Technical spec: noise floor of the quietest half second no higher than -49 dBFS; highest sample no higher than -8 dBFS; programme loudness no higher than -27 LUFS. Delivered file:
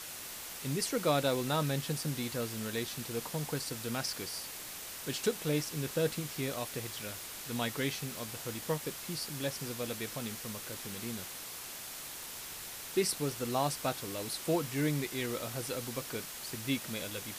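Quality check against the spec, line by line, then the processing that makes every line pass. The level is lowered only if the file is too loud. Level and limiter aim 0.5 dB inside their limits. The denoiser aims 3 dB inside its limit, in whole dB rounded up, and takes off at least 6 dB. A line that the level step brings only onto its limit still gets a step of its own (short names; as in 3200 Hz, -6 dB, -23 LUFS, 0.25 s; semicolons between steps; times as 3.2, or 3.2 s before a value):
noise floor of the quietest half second -44 dBFS: fail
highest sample -17.5 dBFS: OK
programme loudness -35.5 LUFS: OK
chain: denoiser 8 dB, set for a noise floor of -44 dBFS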